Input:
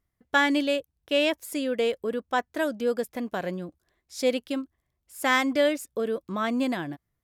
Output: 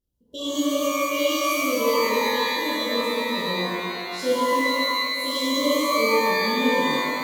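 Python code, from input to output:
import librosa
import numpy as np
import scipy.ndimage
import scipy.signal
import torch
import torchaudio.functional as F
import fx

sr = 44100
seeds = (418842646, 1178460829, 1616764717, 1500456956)

y = fx.brickwall_bandstop(x, sr, low_hz=600.0, high_hz=2800.0)
y = fx.peak_eq(y, sr, hz=62.0, db=8.5, octaves=0.21)
y = fx.rev_shimmer(y, sr, seeds[0], rt60_s=2.3, semitones=12, shimmer_db=-2, drr_db=-10.0)
y = y * 10.0 ** (-8.0 / 20.0)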